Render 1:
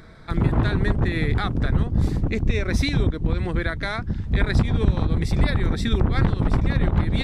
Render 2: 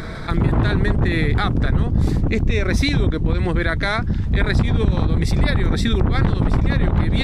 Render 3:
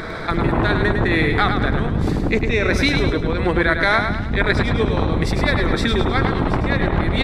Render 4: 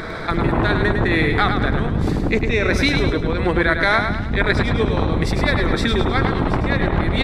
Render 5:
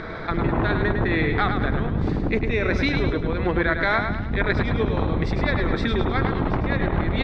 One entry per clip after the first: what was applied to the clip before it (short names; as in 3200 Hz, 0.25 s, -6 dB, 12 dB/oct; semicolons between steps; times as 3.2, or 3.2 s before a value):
fast leveller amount 50%
tone controls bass -10 dB, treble -7 dB; on a send: feedback echo 0.104 s, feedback 45%, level -6.5 dB; on the sum: gain +5 dB
nothing audible
air absorption 170 m; gain -3.5 dB